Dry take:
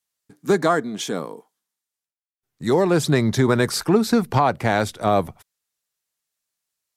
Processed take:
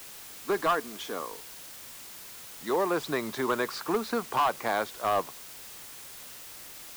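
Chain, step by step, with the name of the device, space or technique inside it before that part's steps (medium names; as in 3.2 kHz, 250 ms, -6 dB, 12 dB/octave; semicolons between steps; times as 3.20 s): drive-through speaker (band-pass 360–3900 Hz; peaking EQ 1.1 kHz +8.5 dB 0.41 oct; hard clipper -12 dBFS, distortion -13 dB; white noise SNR 13 dB); trim -7.5 dB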